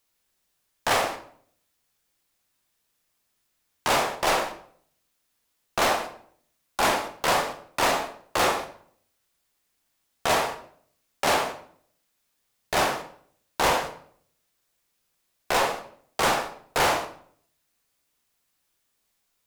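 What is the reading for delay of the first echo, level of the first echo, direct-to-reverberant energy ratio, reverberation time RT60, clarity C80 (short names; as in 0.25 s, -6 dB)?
none, none, 5.5 dB, 0.55 s, 14.0 dB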